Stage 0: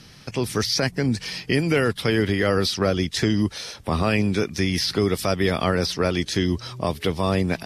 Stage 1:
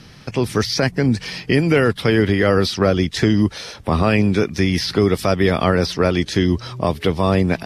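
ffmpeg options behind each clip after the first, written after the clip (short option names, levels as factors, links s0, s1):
-af "highshelf=f=3800:g=-8,volume=1.88"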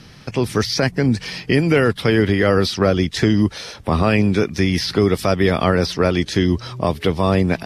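-af anull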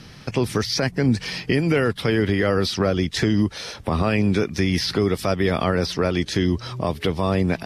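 -af "alimiter=limit=0.316:level=0:latency=1:release=223"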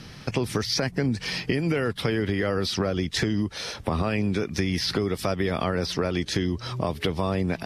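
-af "acompressor=threshold=0.0891:ratio=6"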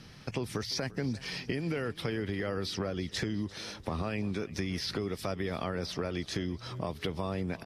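-af "aecho=1:1:346|692|1038|1384:0.106|0.0561|0.0298|0.0158,volume=0.376"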